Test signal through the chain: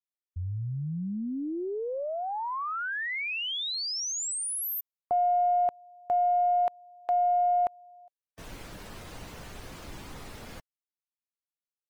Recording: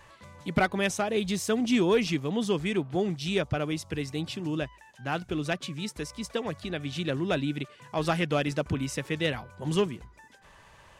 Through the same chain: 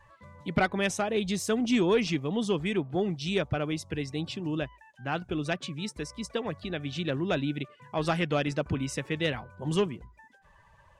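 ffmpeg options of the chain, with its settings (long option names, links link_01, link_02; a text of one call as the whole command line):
ffmpeg -i in.wav -af "afftdn=noise_reduction=13:noise_floor=-50,acontrast=80,aeval=exprs='0.398*(cos(1*acos(clip(val(0)/0.398,-1,1)))-cos(1*PI/2))+0.0158*(cos(2*acos(clip(val(0)/0.398,-1,1)))-cos(2*PI/2))+0.00794*(cos(4*acos(clip(val(0)/0.398,-1,1)))-cos(4*PI/2))':channel_layout=same,volume=-7.5dB" out.wav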